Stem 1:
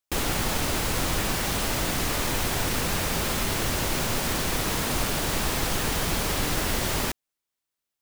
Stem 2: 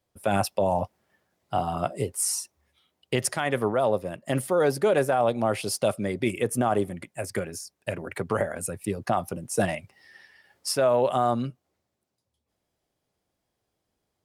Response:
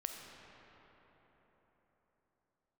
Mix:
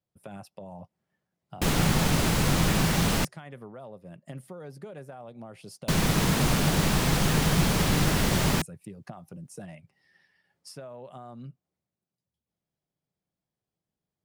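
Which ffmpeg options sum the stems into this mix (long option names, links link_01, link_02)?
-filter_complex "[0:a]adelay=1500,volume=0.5dB,asplit=3[link_01][link_02][link_03];[link_01]atrim=end=3.25,asetpts=PTS-STARTPTS,afade=type=out:start_time=3.246:duration=0.004:curve=hsin[link_04];[link_02]atrim=start=3.25:end=5.88,asetpts=PTS-STARTPTS,volume=0[link_05];[link_03]atrim=start=5.88,asetpts=PTS-STARTPTS,afade=type=in:duration=0.004:curve=hsin[link_06];[link_04][link_05][link_06]concat=n=3:v=0:a=1[link_07];[1:a]acompressor=threshold=-30dB:ratio=4,volume=-12.5dB[link_08];[link_07][link_08]amix=inputs=2:normalize=0,equalizer=frequency=160:width_type=o:width=0.8:gain=12,highshelf=frequency=11000:gain=-6"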